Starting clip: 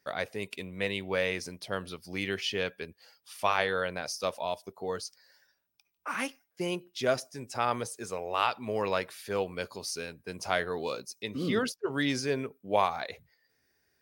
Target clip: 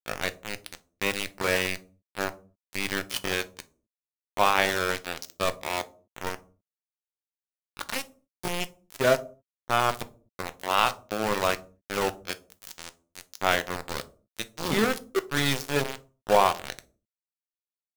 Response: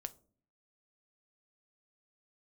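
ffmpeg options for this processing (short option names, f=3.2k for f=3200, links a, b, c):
-filter_complex "[0:a]aeval=exprs='0.316*(cos(1*acos(clip(val(0)/0.316,-1,1)))-cos(1*PI/2))+0.0316*(cos(2*acos(clip(val(0)/0.316,-1,1)))-cos(2*PI/2))+0.00316*(cos(3*acos(clip(val(0)/0.316,-1,1)))-cos(3*PI/2))+0.00316*(cos(8*acos(clip(val(0)/0.316,-1,1)))-cos(8*PI/2))':c=same,aeval=exprs='val(0)*gte(abs(val(0)),0.0473)':c=same,atempo=0.78[a];[1:a]atrim=start_sample=2205,afade=t=out:st=0.31:d=0.01,atrim=end_sample=14112[b];[a][b]afir=irnorm=-1:irlink=0,volume=8.5dB"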